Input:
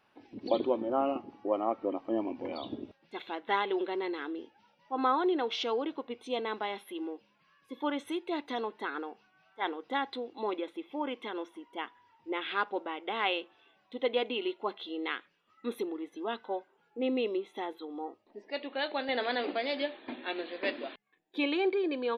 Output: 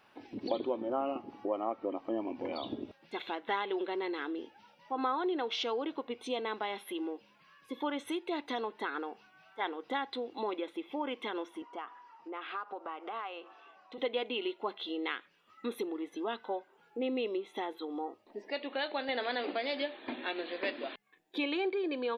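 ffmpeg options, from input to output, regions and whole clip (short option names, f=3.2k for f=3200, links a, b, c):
-filter_complex "[0:a]asettb=1/sr,asplit=3[a][b][c];[a]atrim=end=11.624[d];[b]atrim=start=11.62:end=13.98,asetpts=PTS-STARTPTS,afade=t=in:d=0.004:c=qsin,afade=t=out:st=2.356:d=0.004:c=qsin,acompressor=threshold=-45dB:ratio=4:attack=3.2:release=140:knee=1:detection=peak,highpass=280,equalizer=f=720:t=q:w=4:g=6,equalizer=f=1.2k:t=q:w=4:g=10,equalizer=f=2.1k:t=q:w=4:g=-4,equalizer=f=3.5k:t=q:w=4:g=-9,lowpass=f=6.8k:w=0.5412,lowpass=f=6.8k:w=1.3066[e];[c]atrim=start=13.976[f];[d][e]acrossfade=d=0.004:c1=hsin:c2=qsin[g];[g][f]acrossfade=d=0.004:c1=qsin:c2=hsin,lowshelf=f=360:g=-3,acompressor=threshold=-43dB:ratio=2,volume=6dB"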